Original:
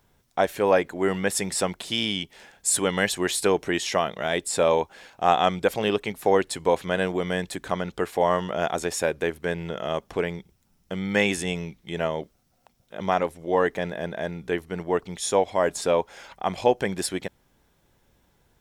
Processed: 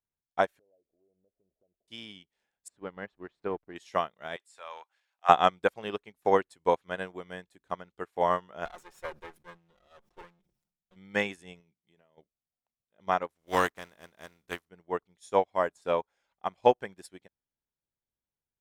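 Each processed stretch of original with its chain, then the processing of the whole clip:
0.59–1.88 Chebyshev low-pass 650 Hz, order 5 + bell 160 Hz -11 dB 2.1 oct + compressor 2.5:1, threshold -40 dBFS
2.68–3.76 backlash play -30.5 dBFS + tape spacing loss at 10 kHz 36 dB
4.36–5.29 HPF 1100 Hz + high shelf 8800 Hz -7 dB + transient shaper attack 0 dB, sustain +9 dB
8.65–10.96 minimum comb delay 5.6 ms + sustainer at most 67 dB/s
11.6–12.18 HPF 92 Hz + compressor 10:1, threshold -29 dBFS
13.29–14.67 spectral contrast lowered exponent 0.54 + notch 860 Hz, Q 18 + mismatched tape noise reduction decoder only
whole clip: dynamic EQ 1200 Hz, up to +6 dB, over -37 dBFS, Q 1.2; upward expander 2.5:1, over -35 dBFS

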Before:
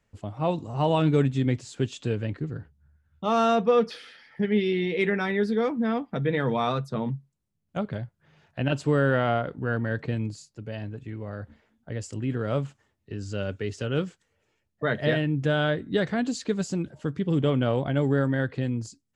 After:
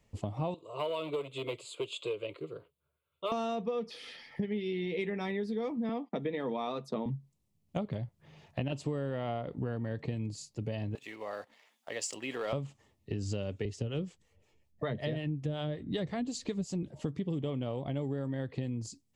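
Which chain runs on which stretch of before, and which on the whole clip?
0.54–3.32 hard clip -18 dBFS + HPF 410 Hz + fixed phaser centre 1200 Hz, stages 8
5.89–7.06 gate -49 dBFS, range -18 dB + HPF 200 Hz 24 dB/oct + high shelf 6800 Hz -7 dB
10.95–12.53 HPF 800 Hz + sample leveller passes 1 + mismatched tape noise reduction encoder only
13.65–16.83 low shelf 94 Hz +11.5 dB + harmonic tremolo 5.4 Hz, crossover 540 Hz
whole clip: bell 1500 Hz -14 dB 0.37 oct; compressor 12:1, threshold -35 dBFS; gain +4 dB

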